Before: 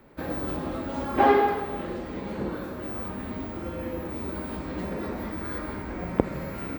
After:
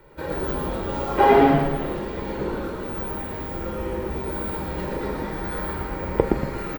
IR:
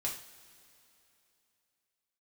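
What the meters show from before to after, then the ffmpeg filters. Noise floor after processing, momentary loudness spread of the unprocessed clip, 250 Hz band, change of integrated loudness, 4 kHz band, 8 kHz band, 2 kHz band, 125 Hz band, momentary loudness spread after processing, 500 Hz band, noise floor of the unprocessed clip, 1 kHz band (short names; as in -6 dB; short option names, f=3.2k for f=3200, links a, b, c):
-32 dBFS, 12 LU, +4.5 dB, +5.0 dB, +5.5 dB, +5.0 dB, +3.5 dB, +6.0 dB, 13 LU, +5.5 dB, -37 dBFS, +4.0 dB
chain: -filter_complex "[0:a]aecho=1:1:2.1:0.77,asplit=7[a][b][c][d][e][f][g];[b]adelay=117,afreqshift=-130,volume=-3dB[h];[c]adelay=234,afreqshift=-260,volume=-10.1dB[i];[d]adelay=351,afreqshift=-390,volume=-17.3dB[j];[e]adelay=468,afreqshift=-520,volume=-24.4dB[k];[f]adelay=585,afreqshift=-650,volume=-31.5dB[l];[g]adelay=702,afreqshift=-780,volume=-38.7dB[m];[a][h][i][j][k][l][m]amix=inputs=7:normalize=0,asplit=2[n][o];[1:a]atrim=start_sample=2205,asetrate=61740,aresample=44100[p];[o][p]afir=irnorm=-1:irlink=0,volume=-3dB[q];[n][q]amix=inputs=2:normalize=0,volume=-2dB"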